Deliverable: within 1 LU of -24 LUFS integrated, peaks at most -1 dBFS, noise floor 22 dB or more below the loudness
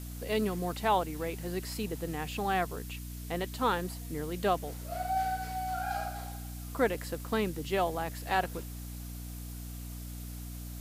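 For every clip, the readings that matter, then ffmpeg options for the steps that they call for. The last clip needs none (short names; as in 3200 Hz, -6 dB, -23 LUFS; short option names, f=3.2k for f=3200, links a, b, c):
hum 60 Hz; harmonics up to 300 Hz; hum level -39 dBFS; noise floor -42 dBFS; noise floor target -56 dBFS; loudness -34.0 LUFS; peak -14.0 dBFS; loudness target -24.0 LUFS
-> -af "bandreject=f=60:t=h:w=4,bandreject=f=120:t=h:w=4,bandreject=f=180:t=h:w=4,bandreject=f=240:t=h:w=4,bandreject=f=300:t=h:w=4"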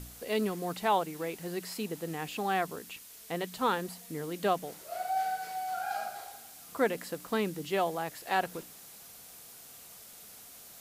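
hum none; noise floor -51 dBFS; noise floor target -56 dBFS
-> -af "afftdn=nr=6:nf=-51"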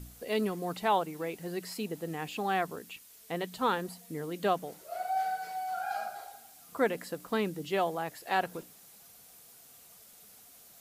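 noise floor -56 dBFS; loudness -33.5 LUFS; peak -14.0 dBFS; loudness target -24.0 LUFS
-> -af "volume=9.5dB"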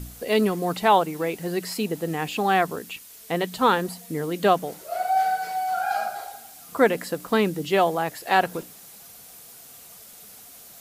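loudness -24.0 LUFS; peak -4.5 dBFS; noise floor -46 dBFS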